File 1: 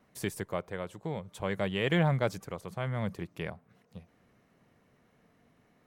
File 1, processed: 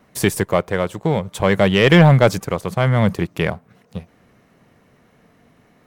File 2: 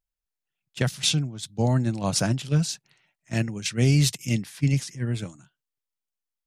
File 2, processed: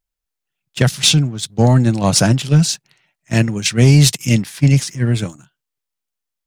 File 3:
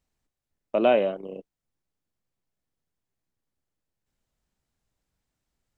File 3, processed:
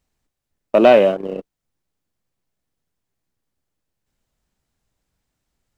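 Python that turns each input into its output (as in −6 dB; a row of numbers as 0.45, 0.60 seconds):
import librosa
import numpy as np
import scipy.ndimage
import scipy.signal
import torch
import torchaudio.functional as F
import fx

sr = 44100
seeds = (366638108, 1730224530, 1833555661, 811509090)

y = fx.leveller(x, sr, passes=1)
y = y * 10.0 ** (-1.5 / 20.0) / np.max(np.abs(y))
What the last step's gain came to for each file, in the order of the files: +13.5, +7.5, +7.5 decibels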